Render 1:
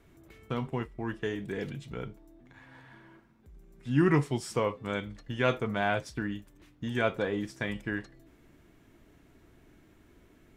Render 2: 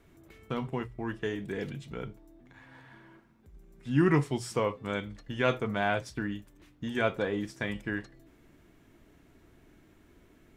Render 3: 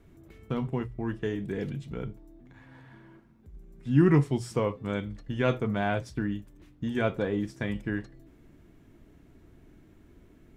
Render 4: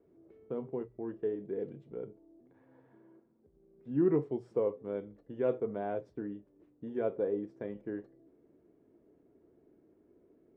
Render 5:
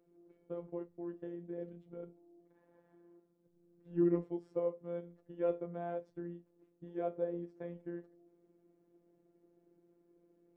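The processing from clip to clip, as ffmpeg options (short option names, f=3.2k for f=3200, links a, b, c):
-af "bandreject=f=60:t=h:w=6,bandreject=f=120:t=h:w=6"
-af "lowshelf=f=440:g=9,volume=-3dB"
-af "bandpass=f=450:t=q:w=2.3:csg=0"
-af "afftfilt=real='hypot(re,im)*cos(PI*b)':imag='0':win_size=1024:overlap=0.75,volume=-1dB"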